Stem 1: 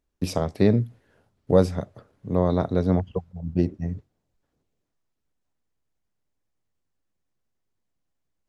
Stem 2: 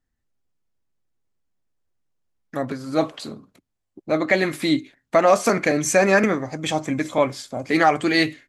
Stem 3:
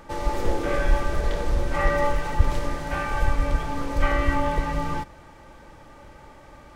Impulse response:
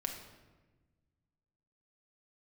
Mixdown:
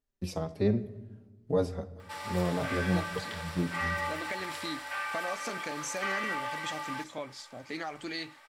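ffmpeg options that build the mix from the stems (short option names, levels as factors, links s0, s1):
-filter_complex "[0:a]asplit=2[s0][s1];[s1]adelay=4.4,afreqshift=-1.9[s2];[s0][s2]amix=inputs=2:normalize=1,volume=0.355,asplit=2[s3][s4];[s4]volume=0.422[s5];[1:a]equalizer=f=4600:t=o:w=1.6:g=8,acompressor=threshold=0.126:ratio=4,volume=0.15[s6];[2:a]highpass=1300,bandreject=f=6400:w=6.1,asoftclip=type=tanh:threshold=0.0631,adelay=2000,volume=0.891[s7];[3:a]atrim=start_sample=2205[s8];[s5][s8]afir=irnorm=-1:irlink=0[s9];[s3][s6][s7][s9]amix=inputs=4:normalize=0"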